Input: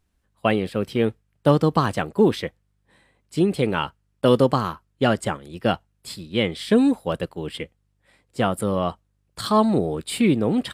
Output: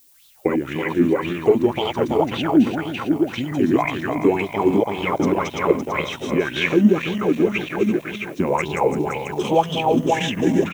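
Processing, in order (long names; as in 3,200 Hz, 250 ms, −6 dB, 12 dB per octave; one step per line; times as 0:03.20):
feedback delay that plays each chunk backwards 167 ms, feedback 75%, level 0 dB
low-shelf EQ 200 Hz −11 dB
downward compressor 2.5 to 1, threshold −23 dBFS, peak gain reduction 8.5 dB
pitch shifter −5 semitones
background noise violet −49 dBFS
high-shelf EQ 8,900 Hz −5 dB
auto-filter bell 1.9 Hz 230–3,600 Hz +17 dB
level −1 dB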